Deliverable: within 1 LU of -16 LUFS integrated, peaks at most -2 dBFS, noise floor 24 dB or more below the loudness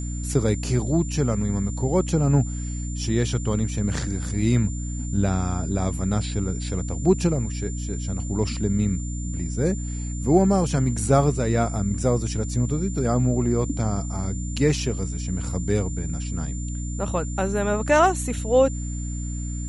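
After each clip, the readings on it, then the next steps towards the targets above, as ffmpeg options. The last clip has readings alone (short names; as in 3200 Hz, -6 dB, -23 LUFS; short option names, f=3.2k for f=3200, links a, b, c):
hum 60 Hz; harmonics up to 300 Hz; hum level -27 dBFS; steady tone 7200 Hz; tone level -38 dBFS; loudness -24.0 LUFS; peak -5.5 dBFS; loudness target -16.0 LUFS
-> -af "bandreject=f=60:t=h:w=4,bandreject=f=120:t=h:w=4,bandreject=f=180:t=h:w=4,bandreject=f=240:t=h:w=4,bandreject=f=300:t=h:w=4"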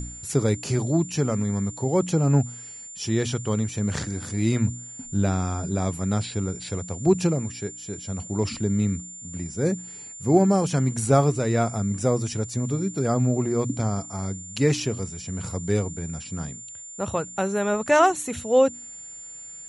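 hum none; steady tone 7200 Hz; tone level -38 dBFS
-> -af "bandreject=f=7.2k:w=30"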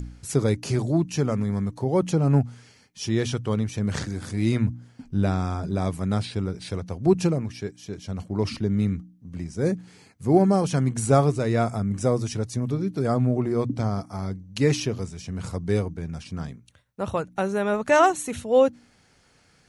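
steady tone none; loudness -25.0 LUFS; peak -6.0 dBFS; loudness target -16.0 LUFS
-> -af "volume=9dB,alimiter=limit=-2dB:level=0:latency=1"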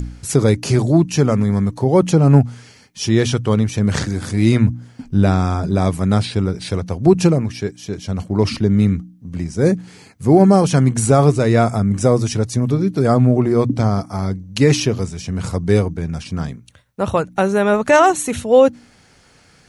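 loudness -16.5 LUFS; peak -2.0 dBFS; noise floor -51 dBFS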